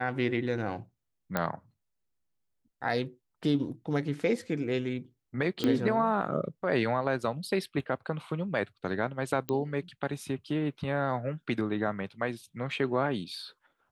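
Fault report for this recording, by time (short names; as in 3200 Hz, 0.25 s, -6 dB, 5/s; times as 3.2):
1.37 pop -14 dBFS
5.64 pop -15 dBFS
9.49 pop -17 dBFS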